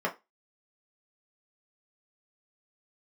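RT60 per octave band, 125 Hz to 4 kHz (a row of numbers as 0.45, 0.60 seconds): 0.15, 0.20, 0.20, 0.20, 0.20, 0.20 seconds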